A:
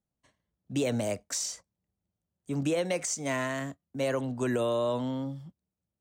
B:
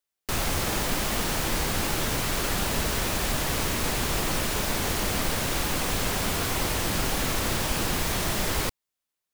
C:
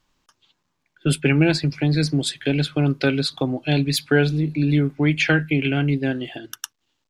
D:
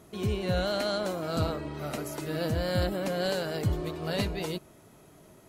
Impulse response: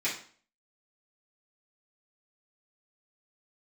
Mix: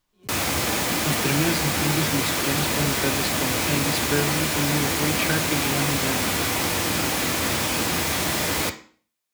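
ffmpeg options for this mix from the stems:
-filter_complex "[1:a]highpass=f=74:w=0.5412,highpass=f=74:w=1.3066,volume=1.26,asplit=2[s0][s1];[s1]volume=0.282[s2];[2:a]volume=0.422[s3];[3:a]aeval=exprs='val(0)*pow(10,-30*if(lt(mod(-3.6*n/s,1),2*abs(-3.6)/1000),1-mod(-3.6*n/s,1)/(2*abs(-3.6)/1000),(mod(-3.6*n/s,1)-2*abs(-3.6)/1000)/(1-2*abs(-3.6)/1000))/20)':c=same,volume=0.141[s4];[4:a]atrim=start_sample=2205[s5];[s2][s5]afir=irnorm=-1:irlink=0[s6];[s0][s3][s4][s6]amix=inputs=4:normalize=0"

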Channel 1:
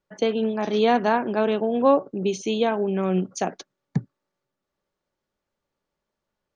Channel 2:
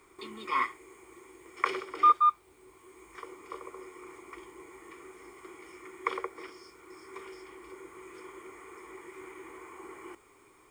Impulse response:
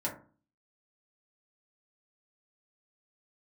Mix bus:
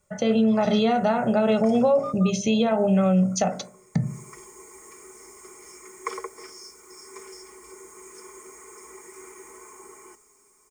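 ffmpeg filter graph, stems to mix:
-filter_complex "[0:a]equalizer=f=99:w=0.85:g=10,aecho=1:1:1.5:0.81,acompressor=threshold=0.1:ratio=6,volume=1.12,asplit=2[s0][s1];[s1]volume=0.501[s2];[1:a]highshelf=f=4600:t=q:w=3:g=10.5,aecho=1:1:4.7:0.67,dynaudnorm=f=220:g=9:m=2.11,volume=0.447,afade=t=in:st=3.99:d=0.23:silence=0.251189[s3];[2:a]atrim=start_sample=2205[s4];[s2][s4]afir=irnorm=-1:irlink=0[s5];[s0][s3][s5]amix=inputs=3:normalize=0,alimiter=limit=0.237:level=0:latency=1:release=124"

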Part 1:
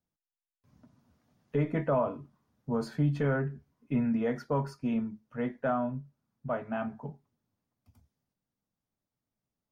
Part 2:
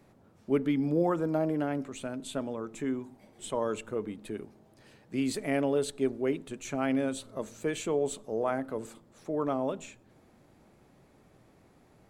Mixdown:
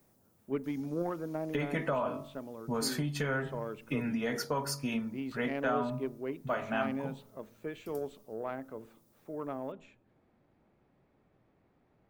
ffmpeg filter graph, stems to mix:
-filter_complex "[0:a]bandreject=f=47.07:t=h:w=4,bandreject=f=94.14:t=h:w=4,bandreject=f=141.21:t=h:w=4,bandreject=f=188.28:t=h:w=4,bandreject=f=235.35:t=h:w=4,bandreject=f=282.42:t=h:w=4,bandreject=f=329.49:t=h:w=4,bandreject=f=376.56:t=h:w=4,bandreject=f=423.63:t=h:w=4,bandreject=f=470.7:t=h:w=4,bandreject=f=517.77:t=h:w=4,bandreject=f=564.84:t=h:w=4,bandreject=f=611.91:t=h:w=4,bandreject=f=658.98:t=h:w=4,bandreject=f=706.05:t=h:w=4,bandreject=f=753.12:t=h:w=4,bandreject=f=800.19:t=h:w=4,bandreject=f=847.26:t=h:w=4,bandreject=f=894.33:t=h:w=4,bandreject=f=941.4:t=h:w=4,bandreject=f=988.47:t=h:w=4,bandreject=f=1035.54:t=h:w=4,bandreject=f=1082.61:t=h:w=4,bandreject=f=1129.68:t=h:w=4,bandreject=f=1176.75:t=h:w=4,bandreject=f=1223.82:t=h:w=4,bandreject=f=1270.89:t=h:w=4,bandreject=f=1317.96:t=h:w=4,acompressor=threshold=0.0316:ratio=6,crystalizer=i=9.5:c=0,volume=0.944[s0];[1:a]lowpass=3000,aeval=exprs='0.168*(cos(1*acos(clip(val(0)/0.168,-1,1)))-cos(1*PI/2))+0.0168*(cos(3*acos(clip(val(0)/0.168,-1,1)))-cos(3*PI/2))':c=same,volume=0.501[s1];[s0][s1]amix=inputs=2:normalize=0"

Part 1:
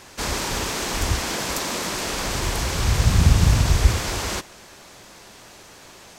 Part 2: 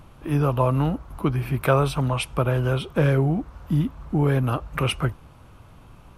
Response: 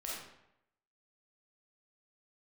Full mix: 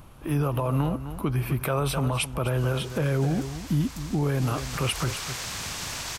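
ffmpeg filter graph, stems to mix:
-filter_complex "[0:a]highpass=f=1400:p=1,dynaudnorm=f=300:g=3:m=2.24,adelay=2400,volume=0.266,afade=t=in:st=4.29:d=0.79:silence=0.281838[s0];[1:a]highshelf=f=7100:g=9.5,volume=0.891,asplit=2[s1][s2];[s2]volume=0.211,aecho=0:1:255:1[s3];[s0][s1][s3]amix=inputs=3:normalize=0,alimiter=limit=0.15:level=0:latency=1:release=50"

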